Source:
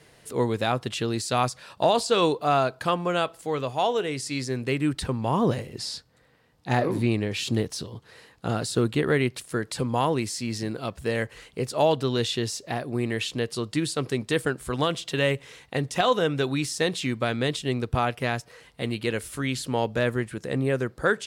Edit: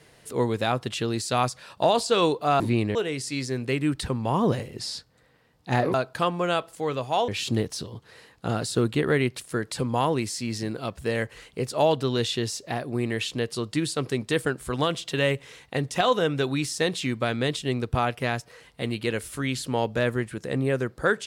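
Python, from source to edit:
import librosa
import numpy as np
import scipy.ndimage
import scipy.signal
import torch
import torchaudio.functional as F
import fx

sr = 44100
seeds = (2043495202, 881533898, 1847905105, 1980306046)

y = fx.edit(x, sr, fx.swap(start_s=2.6, length_s=1.34, other_s=6.93, other_length_s=0.35), tone=tone)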